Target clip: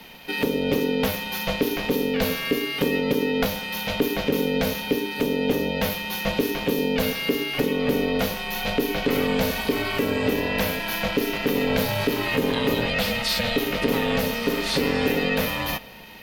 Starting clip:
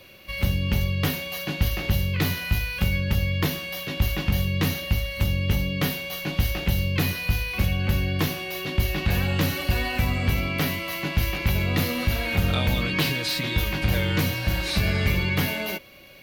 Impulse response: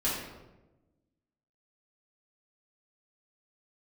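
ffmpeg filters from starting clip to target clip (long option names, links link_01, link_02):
-filter_complex "[0:a]asplit=2[link_01][link_02];[1:a]atrim=start_sample=2205[link_03];[link_02][link_03]afir=irnorm=-1:irlink=0,volume=-26dB[link_04];[link_01][link_04]amix=inputs=2:normalize=0,alimiter=limit=-16.5dB:level=0:latency=1:release=454,aeval=exprs='val(0)*sin(2*PI*350*n/s)':channel_layout=same,volume=7dB"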